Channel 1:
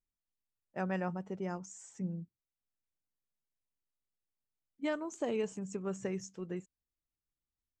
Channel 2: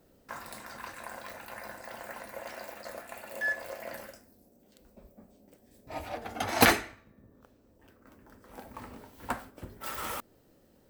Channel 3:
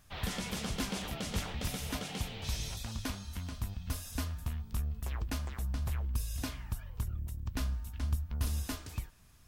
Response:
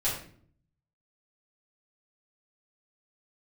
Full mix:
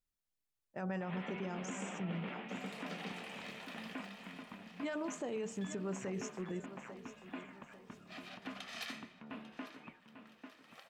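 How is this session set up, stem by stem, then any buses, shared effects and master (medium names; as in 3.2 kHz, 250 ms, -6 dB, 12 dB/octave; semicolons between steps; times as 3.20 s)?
+1.0 dB, 0.00 s, no send, echo send -16.5 dB, de-hum 75.94 Hz, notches 16
+2.5 dB, 2.20 s, no send, echo send -17.5 dB, comb filter that takes the minimum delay 1.6 ms; compression 3:1, threshold -42 dBFS, peak gain reduction 18.5 dB; band-pass filter 3.1 kHz, Q 1.3; auto duck -11 dB, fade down 0.90 s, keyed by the first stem
-2.5 dB, 0.90 s, no send, echo send -9.5 dB, elliptic band-pass 200–2600 Hz, stop band 40 dB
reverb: none
echo: feedback delay 845 ms, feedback 38%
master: peak limiter -31.5 dBFS, peak gain reduction 9.5 dB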